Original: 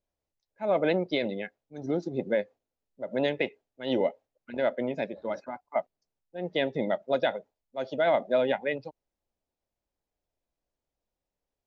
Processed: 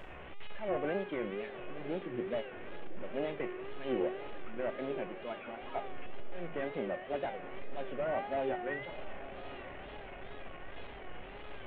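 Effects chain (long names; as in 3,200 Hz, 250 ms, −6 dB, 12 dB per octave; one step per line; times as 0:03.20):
linear delta modulator 16 kbit/s, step −34 dBFS
tuned comb filter 390 Hz, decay 0.87 s, mix 90%
tape wow and flutter 130 cents
on a send: feedback delay with all-pass diffusion 948 ms, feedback 57%, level −14 dB
on the sum: level +10 dB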